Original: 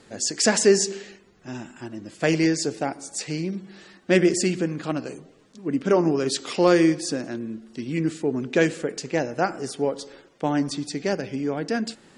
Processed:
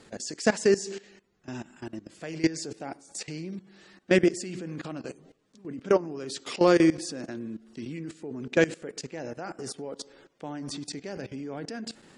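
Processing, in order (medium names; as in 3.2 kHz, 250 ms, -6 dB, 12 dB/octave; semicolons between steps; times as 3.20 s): level held to a coarse grid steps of 18 dB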